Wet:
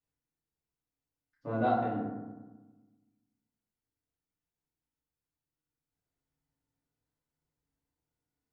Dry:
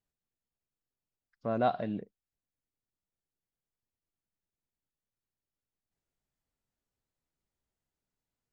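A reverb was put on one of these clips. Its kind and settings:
feedback delay network reverb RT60 1.2 s, low-frequency decay 1.35×, high-frequency decay 0.35×, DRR −8.5 dB
level −9.5 dB

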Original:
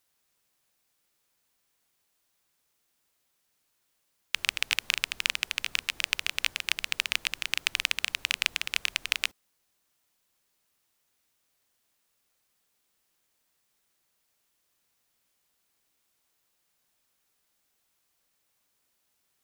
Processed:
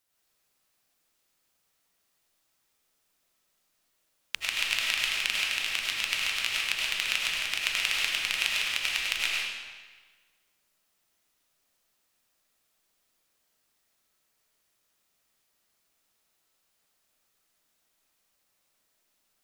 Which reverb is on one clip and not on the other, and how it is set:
comb and all-pass reverb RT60 1.4 s, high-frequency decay 0.9×, pre-delay 60 ms, DRR −4.5 dB
level −4 dB

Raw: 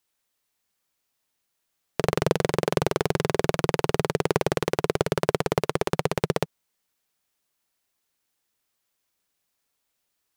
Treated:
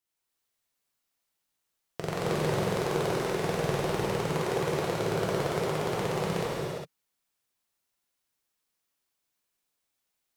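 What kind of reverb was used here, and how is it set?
reverb whose tail is shaped and stops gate 430 ms flat, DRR −7 dB
level −11.5 dB

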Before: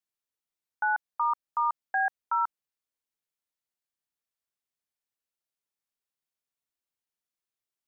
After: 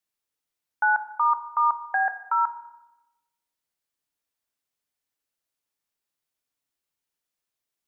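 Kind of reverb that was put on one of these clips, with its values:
feedback delay network reverb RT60 0.96 s, low-frequency decay 1.25×, high-frequency decay 0.95×, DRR 8.5 dB
level +4.5 dB

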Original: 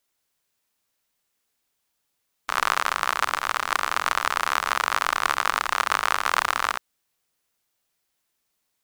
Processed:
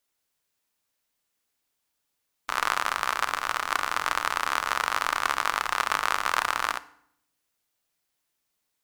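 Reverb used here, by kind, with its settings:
feedback delay network reverb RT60 0.67 s, low-frequency decay 1.35×, high-frequency decay 0.8×, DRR 13.5 dB
level −3 dB

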